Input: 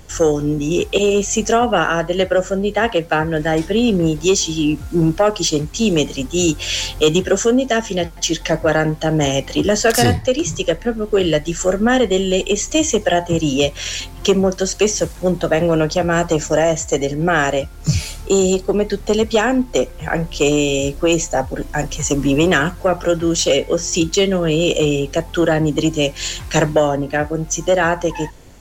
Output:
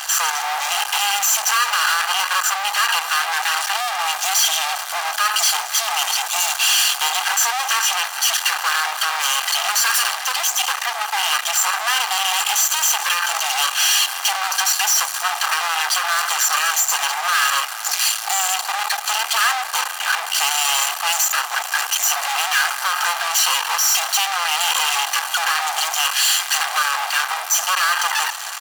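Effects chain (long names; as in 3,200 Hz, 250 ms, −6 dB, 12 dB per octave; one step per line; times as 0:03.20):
lower of the sound and its delayed copy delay 0.69 ms
fuzz pedal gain 43 dB, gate −45 dBFS
comb filter 2.5 ms, depth 38%
convolution reverb RT60 4.9 s, pre-delay 65 ms, DRR 16 dB
pitch vibrato 0.58 Hz 6.4 cents
Butterworth high-pass 700 Hz 48 dB per octave
level −2 dB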